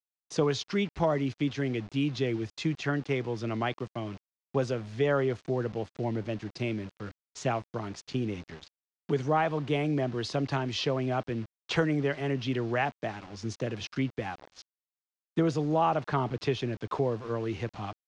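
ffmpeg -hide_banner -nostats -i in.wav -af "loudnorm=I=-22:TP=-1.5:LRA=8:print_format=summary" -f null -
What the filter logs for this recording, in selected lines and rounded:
Input Integrated:    -30.9 LUFS
Input True Peak:     -13.8 dBTP
Input LRA:             2.1 LU
Input Threshold:     -41.2 LUFS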